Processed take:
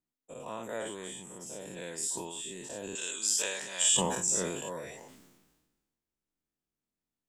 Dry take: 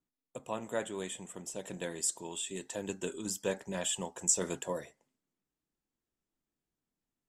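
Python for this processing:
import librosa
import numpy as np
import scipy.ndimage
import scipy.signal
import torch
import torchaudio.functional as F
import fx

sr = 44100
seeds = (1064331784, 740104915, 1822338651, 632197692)

y = fx.spec_dilate(x, sr, span_ms=120)
y = fx.weighting(y, sr, curve='ITU-R 468', at=(2.95, 3.97))
y = fx.sustainer(y, sr, db_per_s=43.0)
y = F.gain(torch.from_numpy(y), -7.5).numpy()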